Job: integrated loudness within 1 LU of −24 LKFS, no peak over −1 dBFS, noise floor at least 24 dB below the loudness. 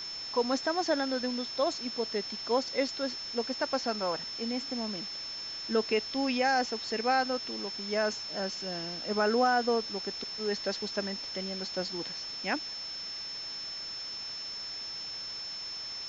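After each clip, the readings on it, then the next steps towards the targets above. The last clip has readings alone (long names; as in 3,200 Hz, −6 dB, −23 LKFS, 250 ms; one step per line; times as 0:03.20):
interfering tone 5,300 Hz; level of the tone −37 dBFS; background noise floor −40 dBFS; target noise floor −56 dBFS; integrated loudness −32.0 LKFS; sample peak −15.0 dBFS; target loudness −24.0 LKFS
→ notch filter 5,300 Hz, Q 30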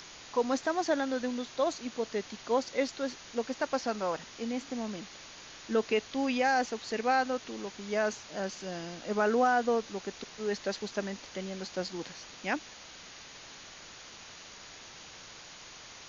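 interfering tone none found; background noise floor −50 dBFS; target noise floor −57 dBFS
→ noise reduction from a noise print 7 dB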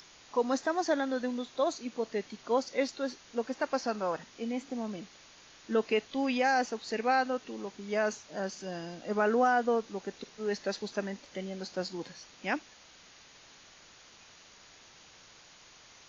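background noise floor −57 dBFS; integrated loudness −32.5 LKFS; sample peak −15.5 dBFS; target loudness −24.0 LKFS
→ level +8.5 dB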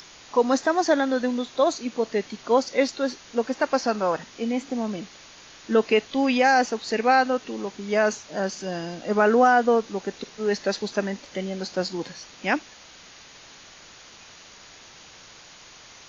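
integrated loudness −24.0 LKFS; sample peak −7.0 dBFS; background noise floor −48 dBFS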